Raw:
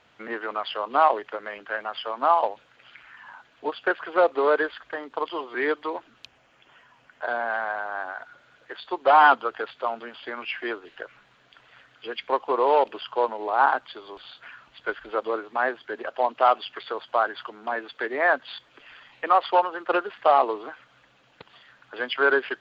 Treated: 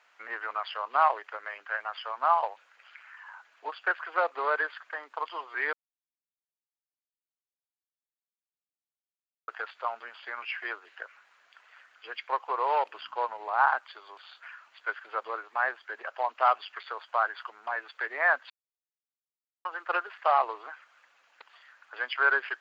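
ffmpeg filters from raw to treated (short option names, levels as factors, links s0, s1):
-filter_complex "[0:a]asettb=1/sr,asplit=3[s0][s1][s2];[s0]atrim=end=12.944[s3];[s1]atrim=start=12.94:end=13.77,asetpts=PTS-STARTPTS,afade=t=in:d=0.004:c=qsin,afade=t=out:st=0.826:d=0.004:c=qsin,aeval=exprs='val(0)+0.00708*(sin(2*PI*60*n/s)+sin(2*PI*2*60*n/s)/2+sin(2*PI*3*60*n/s)/3+sin(2*PI*4*60*n/s)/4+sin(2*PI*5*60*n/s)/5)':c=same[s4];[s2]atrim=start=13.766[s5];[s3][s4]acrossfade=d=0.004:c1=hsin:c2=qsin[s6];[s6][s5]acrossfade=d=0.004:c1=qsin:c2=hsin,asplit=5[s7][s8][s9][s10][s11];[s7]atrim=end=5.73,asetpts=PTS-STARTPTS,afade=t=out:st=5.726:d=0.004:c=hsin[s12];[s8]atrim=start=5.73:end=9.48,asetpts=PTS-STARTPTS,volume=0[s13];[s9]atrim=start=9.48:end=18.5,asetpts=PTS-STARTPTS,afade=t=in:d=0.004:c=hsin,afade=t=out:st=9.016:d=0.004:c=hsin[s14];[s10]atrim=start=18.5:end=19.65,asetpts=PTS-STARTPTS,volume=0[s15];[s11]atrim=start=19.65,asetpts=PTS-STARTPTS,afade=t=in:d=0.004:c=hsin[s16];[s12][s13][s14][s15][s16]concat=n=5:v=0:a=1,highpass=1000,equalizer=f=3400:t=o:w=0.64:g=-8.5"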